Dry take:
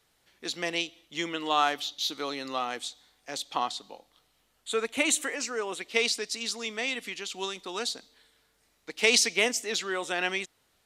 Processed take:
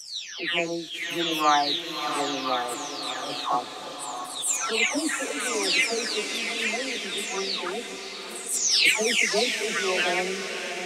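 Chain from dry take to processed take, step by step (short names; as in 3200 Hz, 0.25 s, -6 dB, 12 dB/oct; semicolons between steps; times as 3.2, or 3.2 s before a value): spectral delay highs early, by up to 0.682 s; diffused feedback echo 0.638 s, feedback 60%, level -8.5 dB; attack slew limiter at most 120 dB/s; gain +6 dB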